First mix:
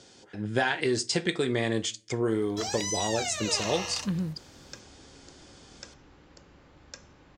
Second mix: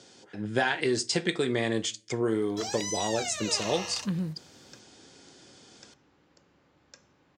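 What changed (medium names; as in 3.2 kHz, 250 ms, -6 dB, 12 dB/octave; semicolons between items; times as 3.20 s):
first sound: send off; second sound -8.0 dB; master: add high-pass 110 Hz 12 dB/octave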